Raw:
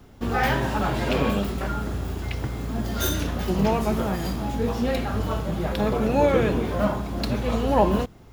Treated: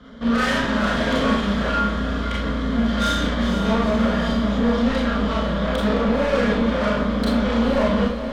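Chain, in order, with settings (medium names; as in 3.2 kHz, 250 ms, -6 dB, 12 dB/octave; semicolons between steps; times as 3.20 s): high-pass 41 Hz; in parallel at +1 dB: peak limiter -15 dBFS, peak gain reduction 7 dB; on the sum: resonant low-pass 3.1 kHz, resonance Q 7.1; static phaser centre 540 Hz, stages 8; saturation -23 dBFS, distortion -8 dB; on a send: echo that smears into a reverb 480 ms, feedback 53%, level -9.5 dB; on the sum: Schroeder reverb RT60 0.35 s, combs from 27 ms, DRR -3.5 dB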